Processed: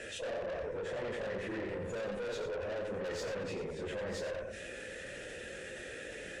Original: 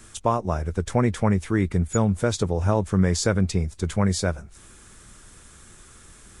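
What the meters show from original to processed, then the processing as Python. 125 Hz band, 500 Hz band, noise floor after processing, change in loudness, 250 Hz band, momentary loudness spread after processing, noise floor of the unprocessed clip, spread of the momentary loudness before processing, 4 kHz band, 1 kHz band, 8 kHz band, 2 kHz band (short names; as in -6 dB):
-25.5 dB, -9.0 dB, -46 dBFS, -16.0 dB, -20.5 dB, 6 LU, -49 dBFS, 6 LU, -11.0 dB, -17.5 dB, -18.5 dB, -6.5 dB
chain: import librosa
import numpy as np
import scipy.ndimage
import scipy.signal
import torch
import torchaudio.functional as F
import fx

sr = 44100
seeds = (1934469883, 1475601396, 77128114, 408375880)

y = fx.phase_scramble(x, sr, seeds[0], window_ms=100)
y = fx.low_shelf(y, sr, hz=120.0, db=6.0)
y = np.clip(10.0 ** (16.0 / 20.0) * y, -1.0, 1.0) / 10.0 ** (16.0 / 20.0)
y = fx.vowel_filter(y, sr, vowel='e')
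y = fx.tube_stage(y, sr, drive_db=41.0, bias=0.35)
y = y + 10.0 ** (-6.5 / 20.0) * np.pad(y, (int(89 * sr / 1000.0), 0))[:len(y)]
y = fx.env_flatten(y, sr, amount_pct=70)
y = y * 10.0 ** (3.0 / 20.0)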